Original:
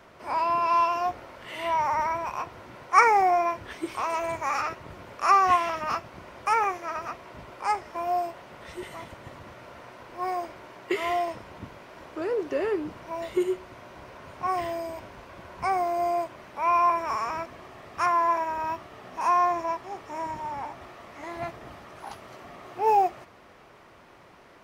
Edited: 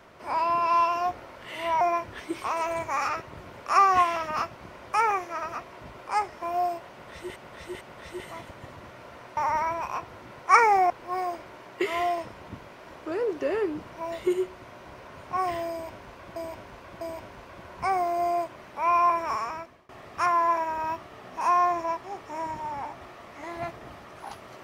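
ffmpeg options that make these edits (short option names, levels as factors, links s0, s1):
-filter_complex "[0:a]asplit=9[s0][s1][s2][s3][s4][s5][s6][s7][s8];[s0]atrim=end=1.812[s9];[s1]atrim=start=3.338:end=8.892[s10];[s2]atrim=start=8.438:end=8.892[s11];[s3]atrim=start=8.438:end=10.002[s12];[s4]atrim=start=1.808:end=3.342[s13];[s5]atrim=start=9.998:end=15.462[s14];[s6]atrim=start=14.808:end=15.462[s15];[s7]atrim=start=14.808:end=17.69,asetpts=PTS-STARTPTS,afade=t=out:st=2.322:d=0.56:silence=0.0707946[s16];[s8]atrim=start=17.69,asetpts=PTS-STARTPTS,afade=t=in:d=0.004:c=hsin:silence=0.0707946[s17];[s9][s10]acrossfade=d=0.004:c1=hsin:c2=hsin[s18];[s18][s11]acrossfade=d=0.004:c1=hsin:c2=hsin[s19];[s19][s12]acrossfade=d=0.004:c1=hsin:c2=hsin[s20];[s20][s13]acrossfade=d=0.004:c1=hsin:c2=hsin[s21];[s21][s14]acrossfade=d=0.004:c1=hsin:c2=hsin[s22];[s22][s15]acrossfade=d=0.004:c1=hsin:c2=hsin[s23];[s16][s17]concat=n=2:v=0:a=1[s24];[s23][s24]acrossfade=d=0.004:c1=hsin:c2=hsin"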